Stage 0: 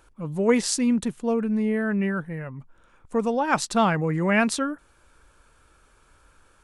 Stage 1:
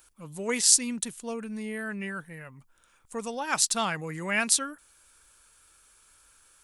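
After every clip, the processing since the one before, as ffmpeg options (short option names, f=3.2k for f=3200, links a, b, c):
-af "crystalizer=i=10:c=0,volume=-12.5dB"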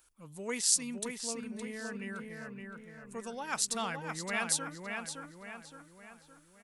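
-filter_complex "[0:a]asplit=2[a][b];[b]adelay=566,lowpass=f=3.1k:p=1,volume=-4dB,asplit=2[c][d];[d]adelay=566,lowpass=f=3.1k:p=1,volume=0.49,asplit=2[e][f];[f]adelay=566,lowpass=f=3.1k:p=1,volume=0.49,asplit=2[g][h];[h]adelay=566,lowpass=f=3.1k:p=1,volume=0.49,asplit=2[i][j];[j]adelay=566,lowpass=f=3.1k:p=1,volume=0.49,asplit=2[k][l];[l]adelay=566,lowpass=f=3.1k:p=1,volume=0.49[m];[a][c][e][g][i][k][m]amix=inputs=7:normalize=0,volume=-7.5dB"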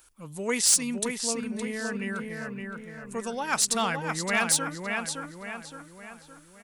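-af "asoftclip=type=hard:threshold=-24dB,volume=8.5dB"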